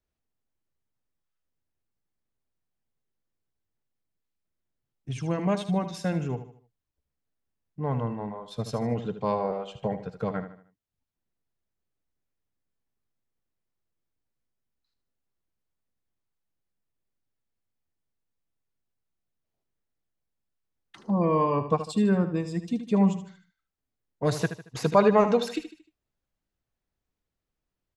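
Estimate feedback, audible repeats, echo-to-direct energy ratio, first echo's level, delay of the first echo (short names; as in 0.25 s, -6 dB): 40%, 4, -10.0 dB, -11.0 dB, 76 ms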